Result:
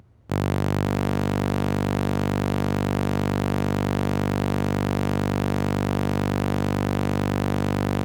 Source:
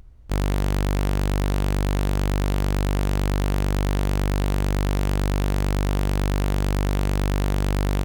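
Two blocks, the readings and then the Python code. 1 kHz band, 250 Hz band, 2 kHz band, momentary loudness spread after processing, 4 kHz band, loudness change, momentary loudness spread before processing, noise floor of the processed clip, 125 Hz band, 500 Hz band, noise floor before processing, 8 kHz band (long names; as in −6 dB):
+3.0 dB, +4.0 dB, +1.0 dB, 0 LU, −1.5 dB, 0.0 dB, 0 LU, −25 dBFS, −1.0 dB, +3.5 dB, −22 dBFS, −3.5 dB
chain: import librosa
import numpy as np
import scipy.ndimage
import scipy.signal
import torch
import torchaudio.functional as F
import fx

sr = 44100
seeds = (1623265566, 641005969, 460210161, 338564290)

p1 = scipy.signal.sosfilt(scipy.signal.butter(4, 91.0, 'highpass', fs=sr, output='sos'), x)
p2 = fx.high_shelf(p1, sr, hz=2500.0, db=-8.0)
p3 = p2 + fx.echo_single(p2, sr, ms=547, db=-11.0, dry=0)
y = p3 * librosa.db_to_amplitude(3.5)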